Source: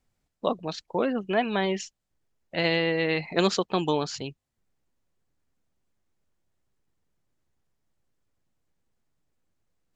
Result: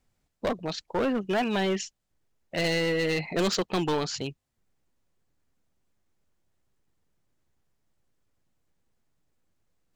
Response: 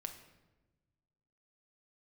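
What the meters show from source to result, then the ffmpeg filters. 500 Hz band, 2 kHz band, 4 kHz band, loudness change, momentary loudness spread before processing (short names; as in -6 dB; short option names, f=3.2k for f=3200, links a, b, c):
-1.5 dB, -1.5 dB, -0.5 dB, -1.0 dB, 10 LU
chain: -af "asoftclip=type=hard:threshold=-24dB,volume=2dB"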